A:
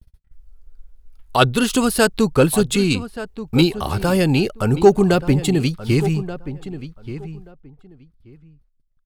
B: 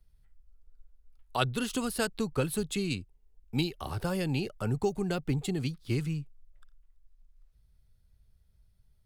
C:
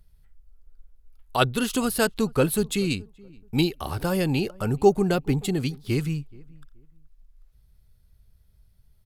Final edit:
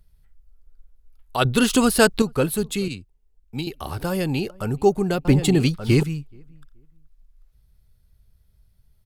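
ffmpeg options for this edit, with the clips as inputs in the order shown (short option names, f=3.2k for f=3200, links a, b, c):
-filter_complex "[0:a]asplit=2[a][b];[2:a]asplit=4[c][d][e][f];[c]atrim=end=1.452[g];[a]atrim=start=1.448:end=2.222[h];[d]atrim=start=2.218:end=2.882[i];[1:a]atrim=start=2.878:end=3.672[j];[e]atrim=start=3.668:end=5.252[k];[b]atrim=start=5.248:end=6.032[l];[f]atrim=start=6.028[m];[g][h]acrossfade=d=0.004:c1=hsin:c2=hsin[n];[n][i]acrossfade=d=0.004:c1=hsin:c2=hsin[o];[o][j]acrossfade=d=0.004:c1=hsin:c2=hsin[p];[p][k]acrossfade=d=0.004:c1=hsin:c2=hsin[q];[q][l]acrossfade=d=0.004:c1=hsin:c2=hsin[r];[r][m]acrossfade=d=0.004:c1=hsin:c2=hsin"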